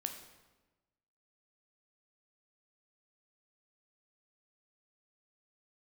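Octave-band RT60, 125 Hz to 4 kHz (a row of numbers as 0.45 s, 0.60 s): 1.4 s, 1.3 s, 1.2 s, 1.1 s, 1.0 s, 0.90 s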